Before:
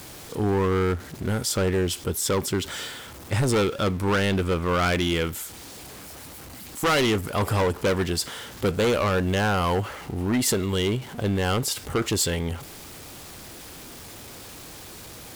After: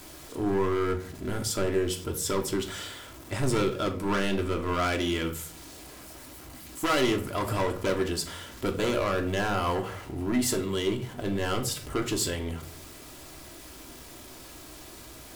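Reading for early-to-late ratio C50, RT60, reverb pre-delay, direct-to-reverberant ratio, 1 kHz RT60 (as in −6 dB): 12.5 dB, 0.50 s, 3 ms, 2.5 dB, 0.40 s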